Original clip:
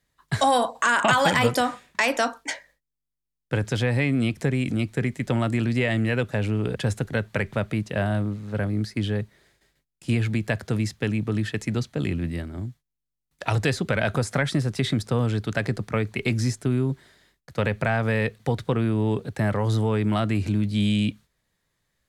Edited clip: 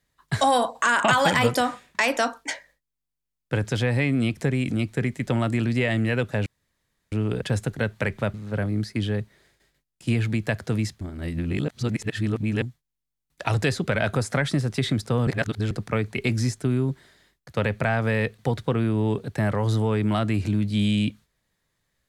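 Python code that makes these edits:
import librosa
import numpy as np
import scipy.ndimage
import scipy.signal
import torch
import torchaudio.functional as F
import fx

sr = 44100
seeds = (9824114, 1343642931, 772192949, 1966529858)

y = fx.edit(x, sr, fx.insert_room_tone(at_s=6.46, length_s=0.66),
    fx.cut(start_s=7.68, length_s=0.67),
    fx.reverse_span(start_s=11.02, length_s=1.61),
    fx.reverse_span(start_s=15.28, length_s=0.44), tone=tone)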